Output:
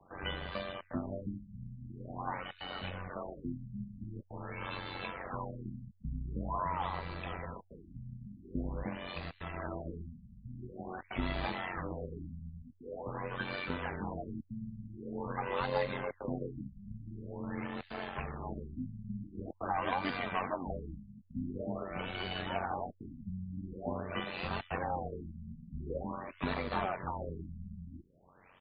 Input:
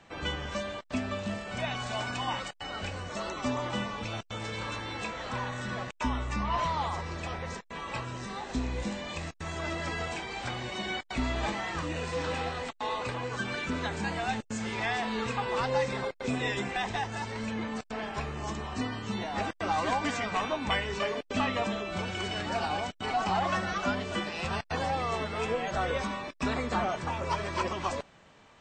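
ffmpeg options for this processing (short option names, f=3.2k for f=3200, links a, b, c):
-filter_complex "[0:a]acrossover=split=250|700|1700[a][b][c][d];[a]acrusher=samples=39:mix=1:aa=0.000001:lfo=1:lforange=62.4:lforate=0.68[e];[d]aecho=1:1:436|872|1308|1744|2180:0.178|0.0907|0.0463|0.0236|0.012[f];[e][b][c][f]amix=inputs=4:normalize=0,tremolo=f=92:d=0.788,afftfilt=real='re*lt(b*sr/1024,220*pow(4900/220,0.5+0.5*sin(2*PI*0.46*pts/sr)))':imag='im*lt(b*sr/1024,220*pow(4900/220,0.5+0.5*sin(2*PI*0.46*pts/sr)))':win_size=1024:overlap=0.75,volume=-1dB"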